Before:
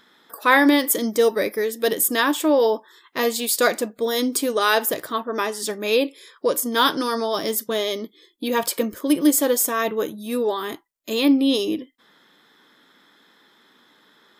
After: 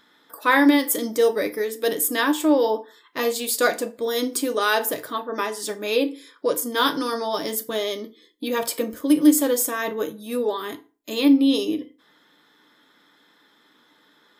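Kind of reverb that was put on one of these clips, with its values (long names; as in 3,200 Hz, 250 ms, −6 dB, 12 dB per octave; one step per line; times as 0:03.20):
feedback delay network reverb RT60 0.35 s, low-frequency decay 1×, high-frequency decay 0.75×, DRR 7.5 dB
level −3 dB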